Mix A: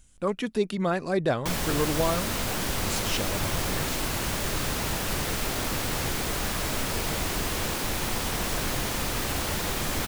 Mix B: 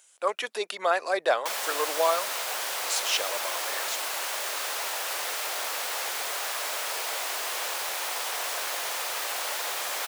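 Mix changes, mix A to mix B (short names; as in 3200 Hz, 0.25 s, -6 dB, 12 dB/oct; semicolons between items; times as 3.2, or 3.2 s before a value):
speech +5.0 dB; master: add HPF 560 Hz 24 dB/oct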